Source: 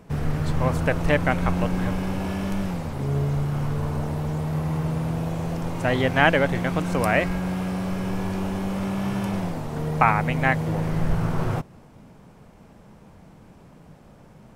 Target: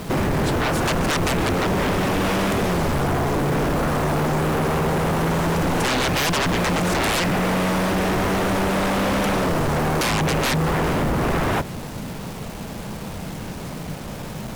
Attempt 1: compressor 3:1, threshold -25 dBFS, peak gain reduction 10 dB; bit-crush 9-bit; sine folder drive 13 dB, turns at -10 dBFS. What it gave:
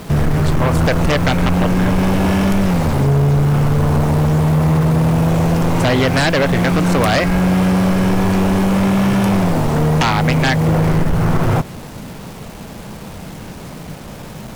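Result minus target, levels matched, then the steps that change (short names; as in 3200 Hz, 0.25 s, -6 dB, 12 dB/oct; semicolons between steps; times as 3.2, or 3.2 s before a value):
sine folder: distortion -18 dB
change: sine folder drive 13 dB, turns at -17.5 dBFS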